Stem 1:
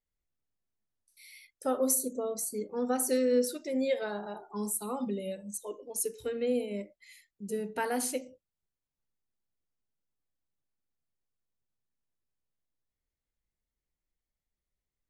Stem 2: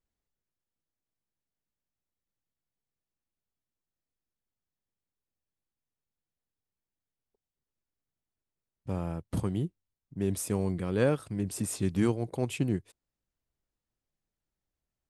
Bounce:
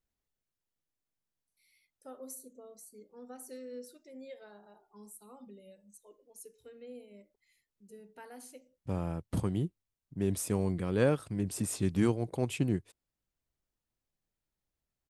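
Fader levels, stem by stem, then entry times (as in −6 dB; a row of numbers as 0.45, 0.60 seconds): −18.0, −1.0 decibels; 0.40, 0.00 seconds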